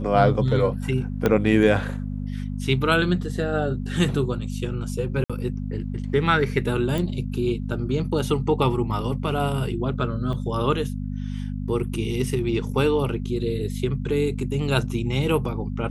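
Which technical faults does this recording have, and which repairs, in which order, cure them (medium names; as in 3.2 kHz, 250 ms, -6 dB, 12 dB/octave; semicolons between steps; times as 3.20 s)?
hum 50 Hz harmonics 5 -29 dBFS
1.26 s: pop -8 dBFS
5.24–5.30 s: dropout 56 ms
6.98 s: pop
10.33 s: dropout 3.8 ms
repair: de-click; de-hum 50 Hz, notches 5; interpolate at 5.24 s, 56 ms; interpolate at 10.33 s, 3.8 ms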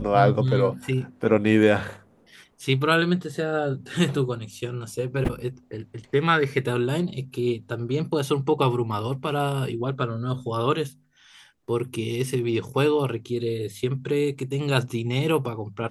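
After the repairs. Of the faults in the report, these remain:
1.26 s: pop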